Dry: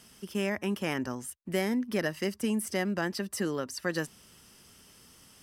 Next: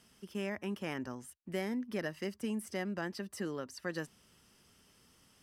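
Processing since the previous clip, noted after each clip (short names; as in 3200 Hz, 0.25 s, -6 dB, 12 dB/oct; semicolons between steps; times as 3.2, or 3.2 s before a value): high shelf 5800 Hz -6 dB; gain -7 dB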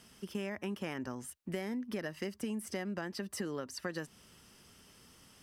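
compressor, threshold -40 dBFS, peak gain reduction 9 dB; gain +5.5 dB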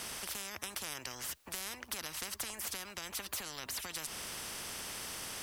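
spectral compressor 10:1; gain +3.5 dB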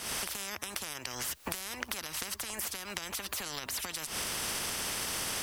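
recorder AGC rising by 79 dB/s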